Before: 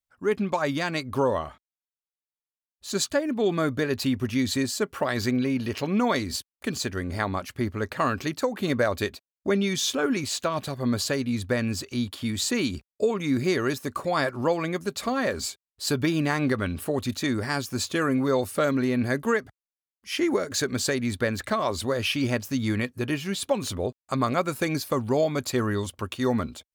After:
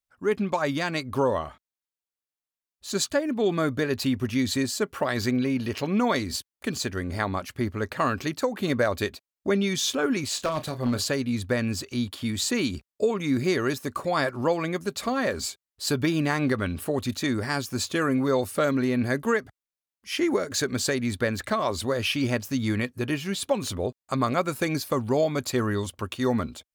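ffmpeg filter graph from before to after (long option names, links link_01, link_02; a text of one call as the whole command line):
ffmpeg -i in.wav -filter_complex "[0:a]asettb=1/sr,asplit=3[link_01][link_02][link_03];[link_01]atrim=end=10.344[link_04];[link_02]atrim=start=10.34:end=11.08,asetpts=PTS-STARTPTS,afade=type=in:duration=0.004:curve=qsin,afade=type=out:start_time=0.736:duration=0.004:curve=qsin,aeval=exprs='0.126*(abs(mod(val(0)/0.126+3,4)-2)-1)':channel_layout=same,asplit=2[link_05][link_06];[link_06]adelay=32,volume=-11dB[link_07];[link_05][link_07]amix=inputs=2:normalize=0,atrim=end_sample=32634[link_08];[link_03]atrim=start=11.076[link_09];[link_04][link_08]acrossfade=duration=0.004:curve1=hsin:curve2=qsin[link_10];[link_10][link_09]acrossfade=duration=0.004:curve1=qsin:curve2=hsin" out.wav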